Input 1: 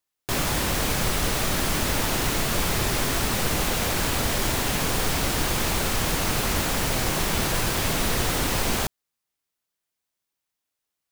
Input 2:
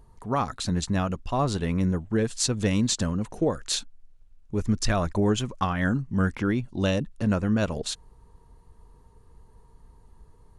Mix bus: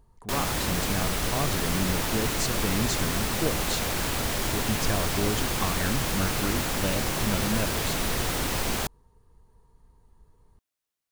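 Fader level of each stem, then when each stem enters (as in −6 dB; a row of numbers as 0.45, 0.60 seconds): −3.5, −5.5 decibels; 0.00, 0.00 seconds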